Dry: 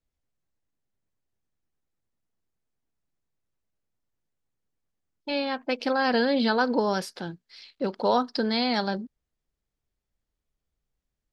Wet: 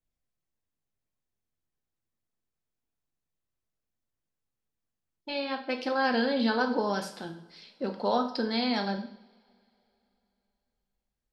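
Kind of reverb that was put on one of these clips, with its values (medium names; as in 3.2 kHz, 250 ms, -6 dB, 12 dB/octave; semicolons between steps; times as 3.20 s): two-slope reverb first 0.6 s, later 3.3 s, from -28 dB, DRR 4 dB; trim -5 dB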